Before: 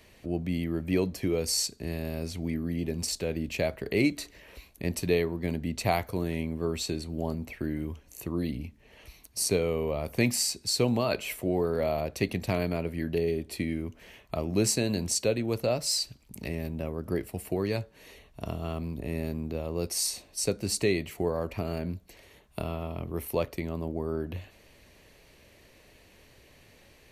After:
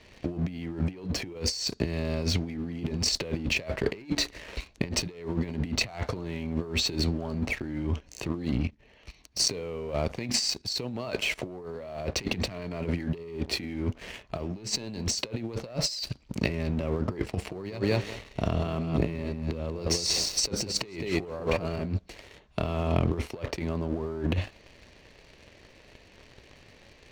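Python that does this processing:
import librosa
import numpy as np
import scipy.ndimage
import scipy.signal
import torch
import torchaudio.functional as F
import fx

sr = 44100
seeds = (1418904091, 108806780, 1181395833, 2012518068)

y = fx.level_steps(x, sr, step_db=10, at=(8.28, 11.38))
y = fx.echo_feedback(y, sr, ms=189, feedback_pct=19, wet_db=-8.5, at=(17.46, 21.82))
y = scipy.signal.sosfilt(scipy.signal.butter(4, 6000.0, 'lowpass', fs=sr, output='sos'), y)
y = fx.leveller(y, sr, passes=2)
y = fx.over_compress(y, sr, threshold_db=-29.0, ratio=-0.5)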